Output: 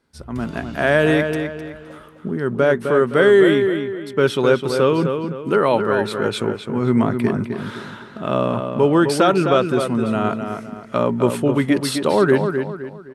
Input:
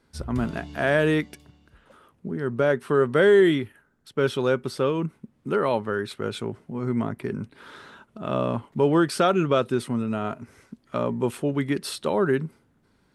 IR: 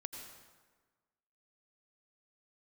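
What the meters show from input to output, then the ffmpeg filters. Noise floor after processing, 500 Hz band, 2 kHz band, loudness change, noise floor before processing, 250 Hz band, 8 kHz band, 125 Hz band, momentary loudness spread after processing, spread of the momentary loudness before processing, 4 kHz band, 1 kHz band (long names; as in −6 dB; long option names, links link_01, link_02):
−41 dBFS, +6.5 dB, +6.5 dB, +6.0 dB, −65 dBFS, +6.5 dB, +6.5 dB, +5.5 dB, 13 LU, 13 LU, +6.5 dB, +7.0 dB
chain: -filter_complex "[0:a]dynaudnorm=framelen=130:gausssize=7:maxgain=14dB,lowshelf=frequency=94:gain=-5.5,asplit=2[link_01][link_02];[link_02]adelay=258,lowpass=frequency=3800:poles=1,volume=-6.5dB,asplit=2[link_03][link_04];[link_04]adelay=258,lowpass=frequency=3800:poles=1,volume=0.37,asplit=2[link_05][link_06];[link_06]adelay=258,lowpass=frequency=3800:poles=1,volume=0.37,asplit=2[link_07][link_08];[link_08]adelay=258,lowpass=frequency=3800:poles=1,volume=0.37[link_09];[link_03][link_05][link_07][link_09]amix=inputs=4:normalize=0[link_10];[link_01][link_10]amix=inputs=2:normalize=0,volume=-2.5dB"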